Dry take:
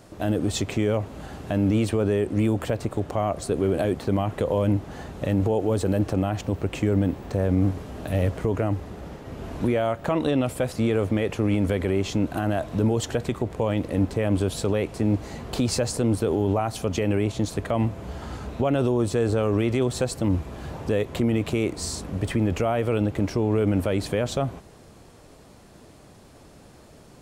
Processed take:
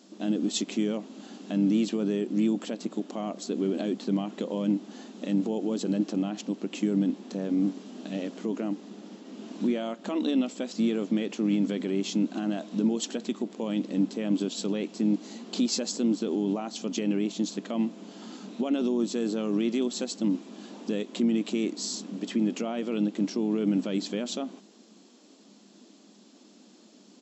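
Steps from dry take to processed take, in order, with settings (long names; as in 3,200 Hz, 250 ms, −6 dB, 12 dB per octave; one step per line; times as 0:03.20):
flat-topped bell 990 Hz −10.5 dB 2.8 octaves
brick-wall band-pass 190–7,800 Hz
pitch-shifted copies added −4 semitones −17 dB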